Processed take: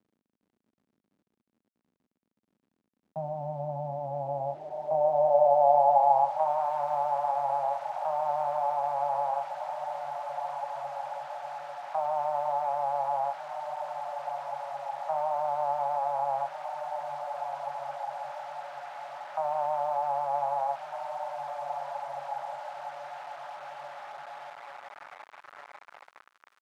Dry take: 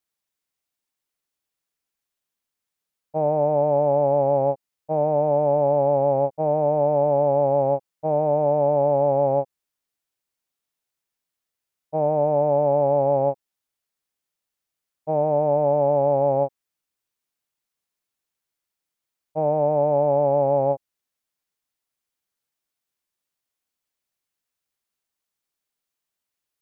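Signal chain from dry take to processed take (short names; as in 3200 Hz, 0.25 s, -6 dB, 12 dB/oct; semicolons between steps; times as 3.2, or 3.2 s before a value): de-hum 172.5 Hz, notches 32; gate with hold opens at -19 dBFS; diffused feedback echo 1.598 s, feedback 44%, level -9 dB; in parallel at +2 dB: compressor 12:1, threshold -28 dBFS, peak gain reduction 14.5 dB; on the sum: HPF 87 Hz 24 dB/oct; on a send at -14 dB: reverb, pre-delay 3 ms; on the sum: flange 1.5 Hz, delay 3.5 ms, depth 3.8 ms, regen -60%; crackle 300/s -47 dBFS; EQ curve 150 Hz 0 dB, 220 Hz -19 dB, 440 Hz -25 dB, 650 Hz +8 dB; bit-crush 6-bit; band-pass sweep 230 Hz -> 1300 Hz, 3.92–6.73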